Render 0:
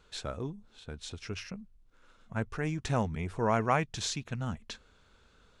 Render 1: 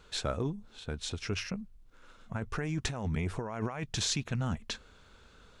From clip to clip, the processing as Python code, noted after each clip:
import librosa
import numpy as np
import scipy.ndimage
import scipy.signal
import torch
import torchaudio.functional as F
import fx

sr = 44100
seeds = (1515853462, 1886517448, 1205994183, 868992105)

y = fx.over_compress(x, sr, threshold_db=-35.0, ratio=-1.0)
y = y * librosa.db_to_amplitude(2.0)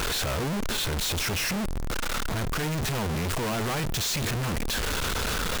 y = np.sign(x) * np.sqrt(np.mean(np.square(x)))
y = y * librosa.db_to_amplitude(8.5)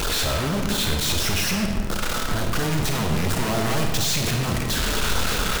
y = fx.filter_lfo_notch(x, sr, shape='sine', hz=4.3, low_hz=430.0, high_hz=2400.0, q=2.0)
y = fx.rev_freeverb(y, sr, rt60_s=1.4, hf_ratio=0.75, predelay_ms=5, drr_db=1.5)
y = y * librosa.db_to_amplitude(3.5)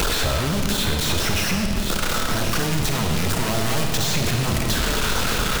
y = x + 10.0 ** (-13.0 / 20.0) * np.pad(x, (int(1075 * sr / 1000.0), 0))[:len(x)]
y = fx.band_squash(y, sr, depth_pct=100)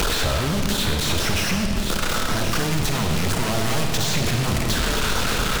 y = fx.doppler_dist(x, sr, depth_ms=0.2)